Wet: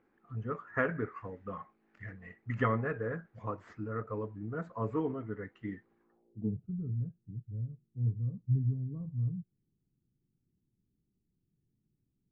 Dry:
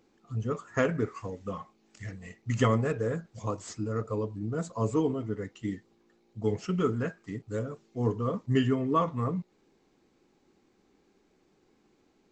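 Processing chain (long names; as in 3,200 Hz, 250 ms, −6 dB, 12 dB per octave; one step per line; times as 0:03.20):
low-pass filter sweep 1,700 Hz → 130 Hz, 0:06.01–0:06.59
level −6.5 dB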